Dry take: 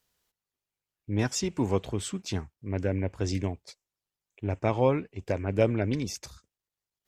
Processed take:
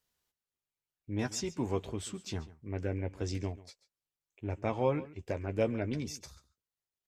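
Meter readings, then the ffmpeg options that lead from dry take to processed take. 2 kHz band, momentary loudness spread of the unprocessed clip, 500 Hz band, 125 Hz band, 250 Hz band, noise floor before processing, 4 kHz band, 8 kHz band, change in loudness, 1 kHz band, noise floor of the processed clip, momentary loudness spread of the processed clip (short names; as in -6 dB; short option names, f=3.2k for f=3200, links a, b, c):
-6.0 dB, 10 LU, -6.0 dB, -7.0 dB, -6.0 dB, under -85 dBFS, -6.0 dB, -6.0 dB, -6.0 dB, -5.5 dB, under -85 dBFS, 10 LU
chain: -filter_complex "[0:a]asplit=2[a][b];[b]adelay=13,volume=-9dB[c];[a][c]amix=inputs=2:normalize=0,asplit=2[d][e];[e]aecho=0:1:138:0.126[f];[d][f]amix=inputs=2:normalize=0,volume=-6.5dB"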